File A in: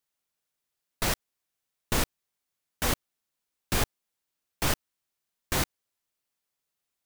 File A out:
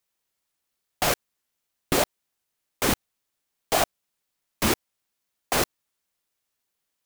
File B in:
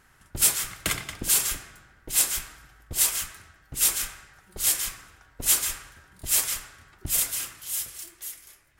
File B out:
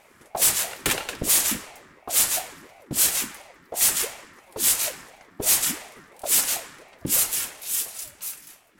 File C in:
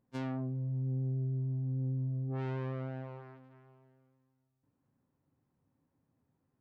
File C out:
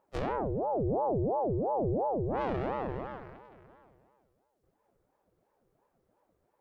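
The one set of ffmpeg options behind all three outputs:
-af "asoftclip=type=hard:threshold=0.126,aeval=exprs='val(0)*sin(2*PI*480*n/s+480*0.55/2.9*sin(2*PI*2.9*n/s))':c=same,volume=2.24"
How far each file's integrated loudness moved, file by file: +4.5 LU, +2.5 LU, +4.5 LU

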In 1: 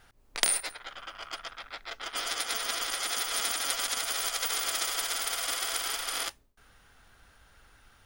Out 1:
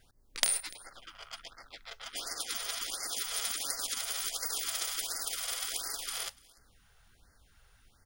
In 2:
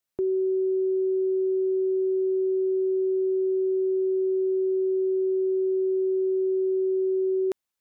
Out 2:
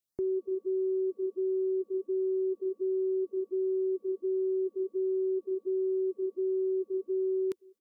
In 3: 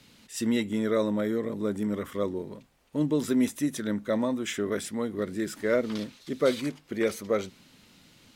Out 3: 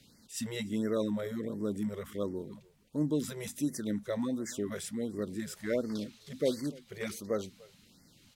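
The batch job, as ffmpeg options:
-filter_complex "[0:a]equalizer=f=1100:w=0.46:g=-6,aeval=exprs='0.75*(cos(1*acos(clip(val(0)/0.75,-1,1)))-cos(1*PI/2))+0.0668*(cos(3*acos(clip(val(0)/0.75,-1,1)))-cos(3*PI/2))+0.0075*(cos(7*acos(clip(val(0)/0.75,-1,1)))-cos(7*PI/2))':c=same,asplit=2[s0][s1];[s1]aecho=0:1:293:0.0668[s2];[s0][s2]amix=inputs=2:normalize=0,afftfilt=real='re*(1-between(b*sr/1024,240*pow(3100/240,0.5+0.5*sin(2*PI*1.4*pts/sr))/1.41,240*pow(3100/240,0.5+0.5*sin(2*PI*1.4*pts/sr))*1.41))':imag='im*(1-between(b*sr/1024,240*pow(3100/240,0.5+0.5*sin(2*PI*1.4*pts/sr))/1.41,240*pow(3100/240,0.5+0.5*sin(2*PI*1.4*pts/sr))*1.41))':win_size=1024:overlap=0.75,volume=1.12"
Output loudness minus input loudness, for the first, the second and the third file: -3.5 LU, -6.5 LU, -6.5 LU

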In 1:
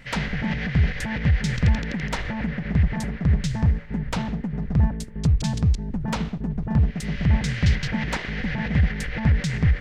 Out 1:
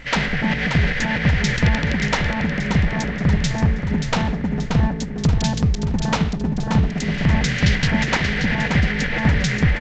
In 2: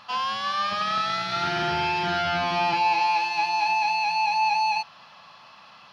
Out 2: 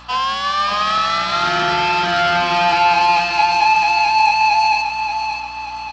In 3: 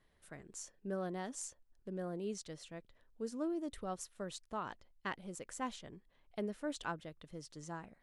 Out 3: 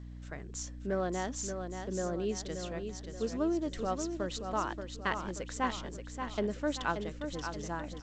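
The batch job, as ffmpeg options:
-filter_complex "[0:a]equalizer=f=73:w=0.57:g=-9,aeval=exprs='val(0)+0.00251*(sin(2*PI*60*n/s)+sin(2*PI*2*60*n/s)/2+sin(2*PI*3*60*n/s)/3+sin(2*PI*4*60*n/s)/4+sin(2*PI*5*60*n/s)/5)':c=same,asplit=2[s0][s1];[s1]aecho=0:1:580|1160|1740|2320|2900:0.447|0.205|0.0945|0.0435|0.02[s2];[s0][s2]amix=inputs=2:normalize=0,volume=2.51" -ar 16000 -c:a g722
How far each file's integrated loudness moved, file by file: +4.0 LU, +8.5 LU, +7.5 LU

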